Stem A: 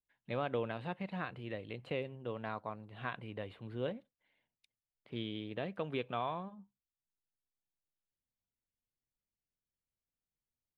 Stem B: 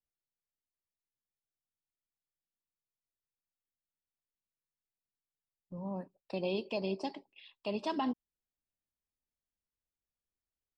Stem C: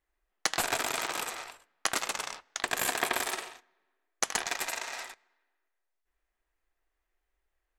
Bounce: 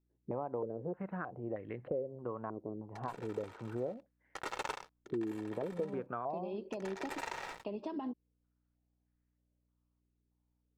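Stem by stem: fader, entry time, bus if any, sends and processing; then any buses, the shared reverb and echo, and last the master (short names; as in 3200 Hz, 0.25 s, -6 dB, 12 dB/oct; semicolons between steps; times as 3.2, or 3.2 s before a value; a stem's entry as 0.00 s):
+2.0 dB, 0.00 s, bus A, no send, stepped low-pass 3.2 Hz 370–1800 Hz
+0.5 dB, 0.00 s, bus A, no send, compressor, threshold -35 dBFS, peak gain reduction 6 dB; hum 60 Hz, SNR 33 dB
-9.5 dB, 2.50 s, no bus, no send, comb 2.2 ms, depth 51%; sample leveller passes 3; sample gate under -35.5 dBFS; auto duck -20 dB, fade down 0.35 s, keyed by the first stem
bus A: 0.0 dB, bell 350 Hz +5 dB 0.86 oct; compressor 3:1, threshold -36 dBFS, peak gain reduction 12 dB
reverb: off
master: LPF 1100 Hz 6 dB/oct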